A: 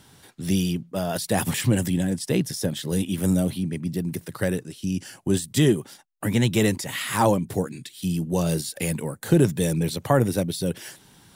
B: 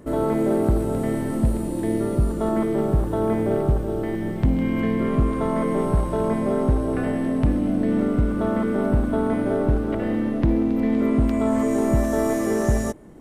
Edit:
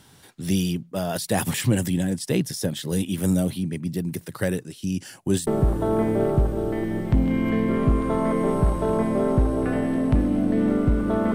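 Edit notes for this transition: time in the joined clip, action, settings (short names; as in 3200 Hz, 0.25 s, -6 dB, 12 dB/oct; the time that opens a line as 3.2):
A
5.47 switch to B from 2.78 s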